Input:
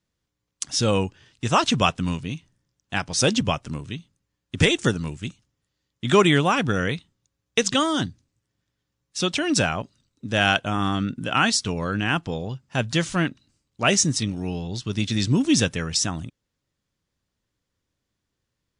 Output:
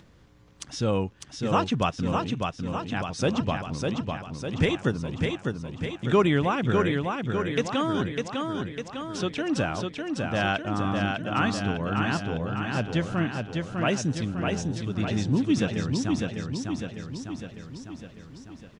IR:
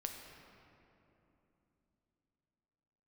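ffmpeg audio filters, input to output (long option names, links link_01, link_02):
-filter_complex "[0:a]lowpass=frequency=1500:poles=1,acompressor=mode=upward:threshold=-29dB:ratio=2.5,asplit=2[link_01][link_02];[link_02]aecho=0:1:602|1204|1806|2408|3010|3612|4214|4816:0.631|0.366|0.212|0.123|0.0714|0.0414|0.024|0.0139[link_03];[link_01][link_03]amix=inputs=2:normalize=0,volume=-3.5dB"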